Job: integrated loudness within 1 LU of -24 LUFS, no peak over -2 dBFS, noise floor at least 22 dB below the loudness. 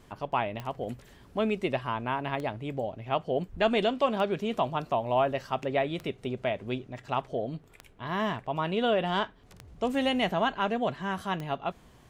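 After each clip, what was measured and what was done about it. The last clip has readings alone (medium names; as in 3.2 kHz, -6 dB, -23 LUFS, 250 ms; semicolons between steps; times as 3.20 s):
clicks found 7; loudness -30.5 LUFS; peak level -12.5 dBFS; loudness target -24.0 LUFS
-> de-click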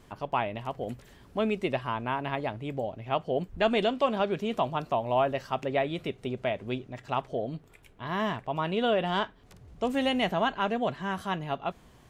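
clicks found 0; loudness -30.5 LUFS; peak level -12.5 dBFS; loudness target -24.0 LUFS
-> trim +6.5 dB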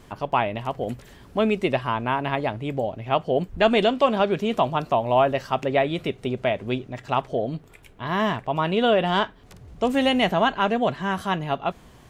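loudness -24.0 LUFS; peak level -6.0 dBFS; noise floor -50 dBFS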